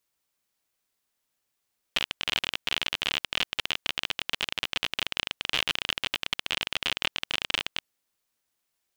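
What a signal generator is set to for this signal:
Geiger counter clicks 37 per second −9.5 dBFS 5.88 s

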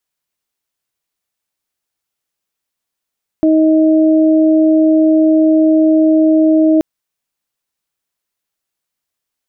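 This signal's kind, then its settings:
steady harmonic partials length 3.38 s, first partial 315 Hz, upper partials −7.5 dB, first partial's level −7.5 dB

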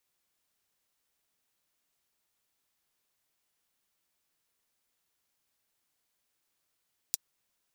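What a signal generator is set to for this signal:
closed synth hi-hat, high-pass 5,100 Hz, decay 0.03 s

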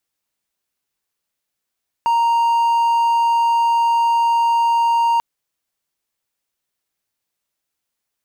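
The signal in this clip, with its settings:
tone triangle 931 Hz −11 dBFS 3.14 s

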